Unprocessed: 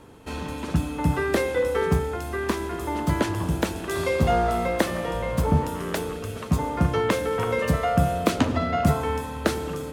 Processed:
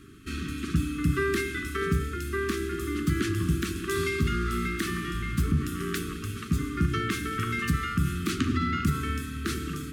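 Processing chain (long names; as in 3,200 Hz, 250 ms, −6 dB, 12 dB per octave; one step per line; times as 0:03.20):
brickwall limiter −14.5 dBFS, peak gain reduction 8 dB
linear-phase brick-wall band-stop 420–1,100 Hz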